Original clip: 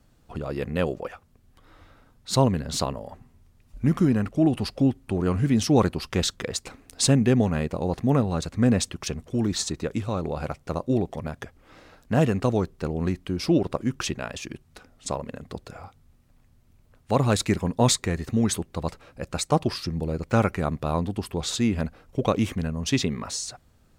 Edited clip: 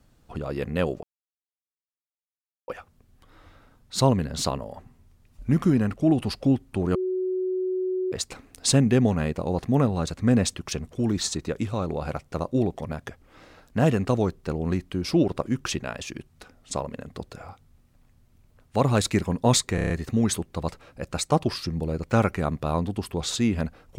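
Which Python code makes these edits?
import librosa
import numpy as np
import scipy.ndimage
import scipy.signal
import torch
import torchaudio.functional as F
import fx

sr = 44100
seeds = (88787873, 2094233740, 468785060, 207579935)

y = fx.edit(x, sr, fx.insert_silence(at_s=1.03, length_s=1.65),
    fx.bleep(start_s=5.3, length_s=1.17, hz=371.0, db=-23.5),
    fx.stutter(start_s=18.1, slice_s=0.03, count=6), tone=tone)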